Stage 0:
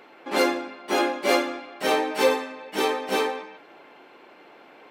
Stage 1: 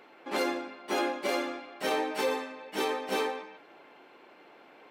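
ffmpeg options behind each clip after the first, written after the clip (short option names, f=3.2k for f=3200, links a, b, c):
-af "alimiter=limit=-14.5dB:level=0:latency=1:release=78,volume=-5dB"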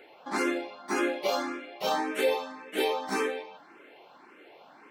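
-filter_complex "[0:a]asplit=2[a][b];[b]afreqshift=1.8[c];[a][c]amix=inputs=2:normalize=1,volume=4.5dB"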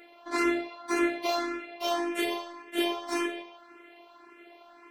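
-af "afftfilt=real='hypot(re,im)*cos(PI*b)':imag='0':win_size=512:overlap=0.75,volume=3.5dB"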